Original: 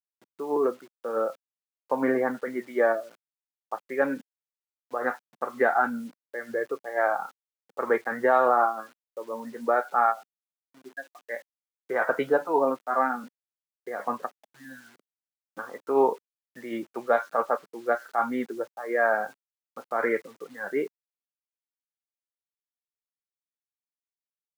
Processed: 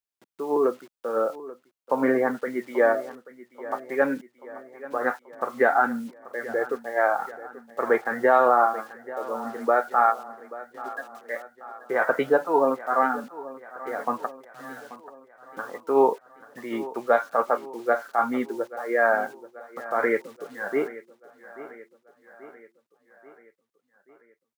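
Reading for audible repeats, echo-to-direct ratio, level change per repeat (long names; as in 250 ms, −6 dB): 4, −15.5 dB, −5.0 dB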